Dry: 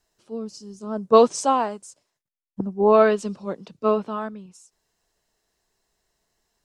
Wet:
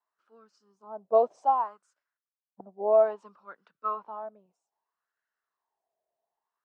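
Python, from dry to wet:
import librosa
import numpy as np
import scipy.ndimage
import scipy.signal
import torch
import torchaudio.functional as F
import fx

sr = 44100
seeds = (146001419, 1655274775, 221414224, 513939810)

y = fx.wah_lfo(x, sr, hz=0.62, low_hz=640.0, high_hz=1500.0, q=5.5)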